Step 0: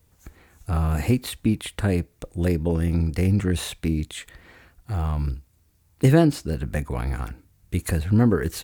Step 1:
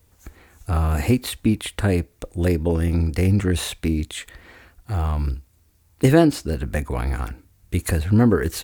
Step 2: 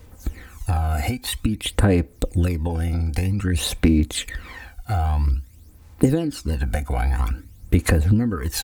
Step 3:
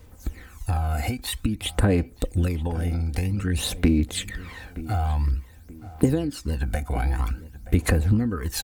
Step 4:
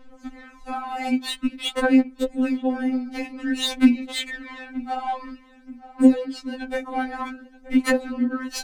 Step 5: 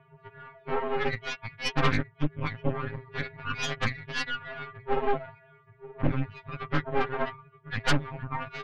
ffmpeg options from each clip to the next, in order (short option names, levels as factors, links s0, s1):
-af "equalizer=f=150:t=o:w=0.56:g=-6,volume=1.5"
-af "aecho=1:1:3.9:0.31,acompressor=threshold=0.0501:ratio=16,aphaser=in_gain=1:out_gain=1:delay=1.4:decay=0.63:speed=0.51:type=sinusoidal,volume=1.78"
-filter_complex "[0:a]asplit=2[s0][s1];[s1]adelay=926,lowpass=f=1900:p=1,volume=0.158,asplit=2[s2][s3];[s3]adelay=926,lowpass=f=1900:p=1,volume=0.38,asplit=2[s4][s5];[s5]adelay=926,lowpass=f=1900:p=1,volume=0.38[s6];[s0][s2][s4][s6]amix=inputs=4:normalize=0,volume=0.708"
-af "adynamicsmooth=sensitivity=3.5:basefreq=3200,afftfilt=real='re*3.46*eq(mod(b,12),0)':imag='im*3.46*eq(mod(b,12),0)':win_size=2048:overlap=0.75,volume=1.88"
-af "highpass=f=440:t=q:w=0.5412,highpass=f=440:t=q:w=1.307,lowpass=f=3000:t=q:w=0.5176,lowpass=f=3000:t=q:w=0.7071,lowpass=f=3000:t=q:w=1.932,afreqshift=-370,aeval=exprs='0.299*(cos(1*acos(clip(val(0)/0.299,-1,1)))-cos(1*PI/2))+0.119*(cos(6*acos(clip(val(0)/0.299,-1,1)))-cos(6*PI/2))':c=same,asoftclip=type=tanh:threshold=0.2"